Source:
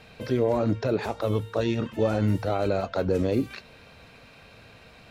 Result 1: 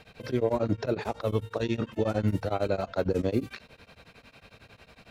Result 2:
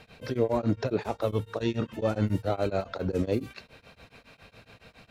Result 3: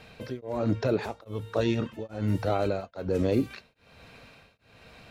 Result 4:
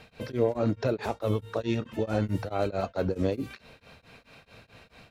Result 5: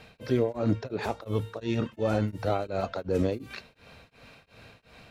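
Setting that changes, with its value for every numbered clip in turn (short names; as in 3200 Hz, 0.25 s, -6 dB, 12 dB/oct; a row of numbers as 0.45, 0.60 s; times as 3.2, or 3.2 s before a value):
beating tremolo, nulls at: 11, 7.2, 1.2, 4.6, 2.8 Hz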